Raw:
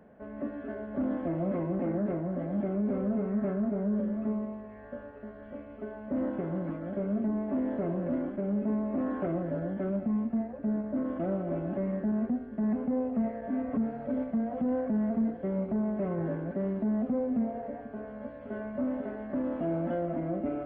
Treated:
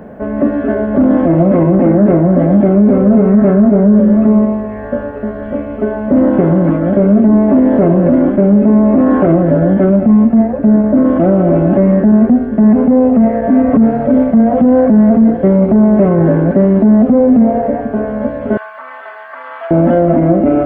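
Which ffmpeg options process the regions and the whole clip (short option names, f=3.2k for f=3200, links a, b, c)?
-filter_complex "[0:a]asettb=1/sr,asplit=3[a][b][c];[a]atrim=end=18.574[d];[b]atrim=start=18.57:end=19.71,asetpts=PTS-STARTPTS,afade=t=in:d=0.004:c=qsin,afade=t=out:st=1.136:d=0.004:c=qsin,highpass=f=1.1k:w=0.5412,highpass=f=1.1k:w=1.3066,aecho=1:1:4.4:0.8,atrim=end_sample=50274[e];[c]atrim=start=19.706[f];[d][e]acrossfade=d=0.004:c1=hsin:c2=qsin[g];[g][f]acrossfade=d=0.004:c1=qsin:c2=hsin,lowpass=f=1k:p=1,aemphasis=mode=production:type=75kf,alimiter=level_in=25.5dB:limit=-1dB:release=50:level=0:latency=1,volume=-1dB"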